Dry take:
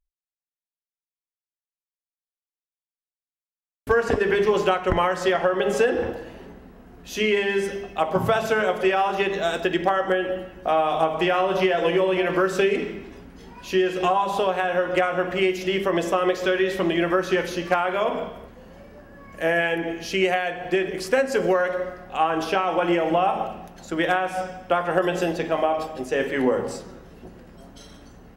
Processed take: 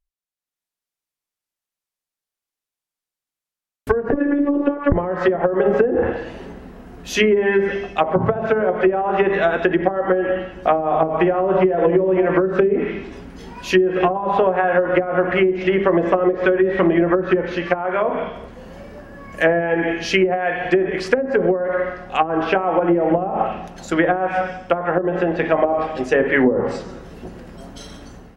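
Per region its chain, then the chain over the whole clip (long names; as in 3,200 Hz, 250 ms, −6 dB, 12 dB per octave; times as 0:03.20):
0:04.12–0:04.92: hollow resonant body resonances 410/1,100/1,700/3,700 Hz, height 8 dB, ringing for 35 ms + phases set to zero 286 Hz
whole clip: treble cut that deepens with the level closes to 370 Hz, closed at −16 dBFS; dynamic equaliser 1,900 Hz, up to +7 dB, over −45 dBFS, Q 1.2; automatic gain control gain up to 8 dB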